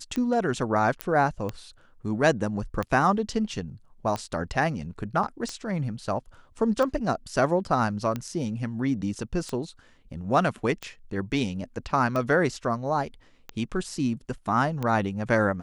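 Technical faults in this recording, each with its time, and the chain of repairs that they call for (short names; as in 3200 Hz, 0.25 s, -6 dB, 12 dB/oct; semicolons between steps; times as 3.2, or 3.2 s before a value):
tick 45 rpm -17 dBFS
1.01 pop -11 dBFS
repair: de-click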